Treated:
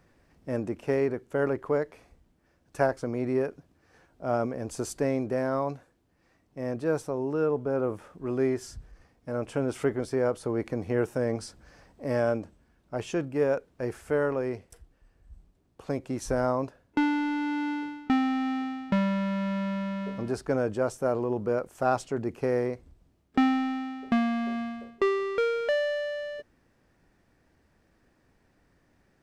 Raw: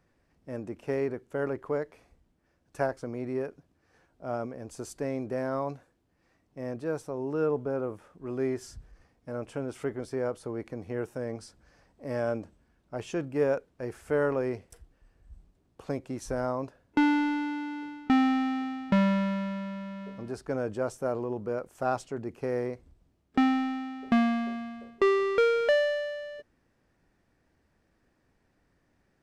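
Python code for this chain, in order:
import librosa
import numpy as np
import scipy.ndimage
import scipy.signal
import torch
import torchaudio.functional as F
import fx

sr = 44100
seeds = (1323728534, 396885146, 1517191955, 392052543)

y = fx.rider(x, sr, range_db=5, speed_s=0.5)
y = y * librosa.db_to_amplitude(2.0)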